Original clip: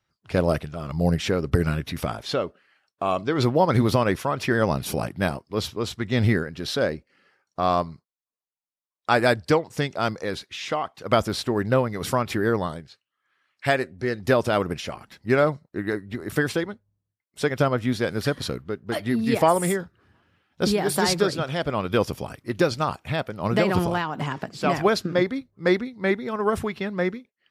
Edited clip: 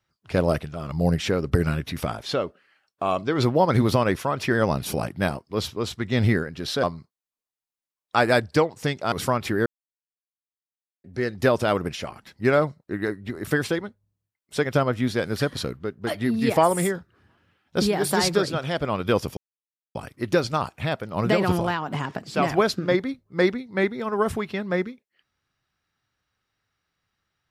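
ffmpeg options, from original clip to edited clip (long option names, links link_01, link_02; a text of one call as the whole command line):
ffmpeg -i in.wav -filter_complex "[0:a]asplit=6[link_01][link_02][link_03][link_04][link_05][link_06];[link_01]atrim=end=6.832[link_07];[link_02]atrim=start=7.768:end=10.062[link_08];[link_03]atrim=start=11.968:end=12.51,asetpts=PTS-STARTPTS,afade=type=out:start_time=0.538:duration=0.004:curve=hsin[link_09];[link_04]atrim=start=12.51:end=13.89,asetpts=PTS-STARTPTS,volume=0[link_10];[link_05]atrim=start=13.89:end=22.22,asetpts=PTS-STARTPTS,afade=type=in:duration=0.004:curve=hsin,afade=type=out:start_time=8.326:duration=0.004:curve=hsin,apad=pad_dur=0.58[link_11];[link_06]atrim=start=22.22,asetpts=PTS-STARTPTS,afade=type=in:duration=0.004:curve=hsin[link_12];[link_07][link_08]acrossfade=duration=0.004:curve1=hsin:curve2=hsin[link_13];[link_09][link_10][link_11][link_12]concat=n=4:v=0:a=1[link_14];[link_13][link_14]acrossfade=duration=0.004:curve1=hsin:curve2=hsin" out.wav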